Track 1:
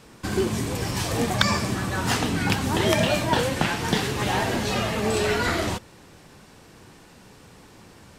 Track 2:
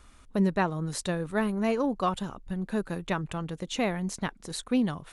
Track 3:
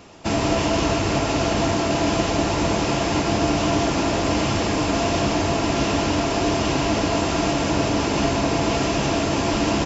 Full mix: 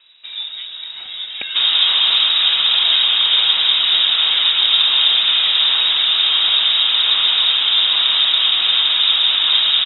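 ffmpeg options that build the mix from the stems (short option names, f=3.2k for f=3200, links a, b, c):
-filter_complex "[0:a]volume=-10.5dB[a];[1:a]acompressor=threshold=-35dB:ratio=3,volume=-6dB[b];[2:a]adelay=1300,volume=0dB[c];[a][b][c]amix=inputs=3:normalize=0,lowpass=f=3.3k:t=q:w=0.5098,lowpass=f=3.3k:t=q:w=0.6013,lowpass=f=3.3k:t=q:w=0.9,lowpass=f=3.3k:t=q:w=2.563,afreqshift=-3900,highshelf=f=2.7k:g=10"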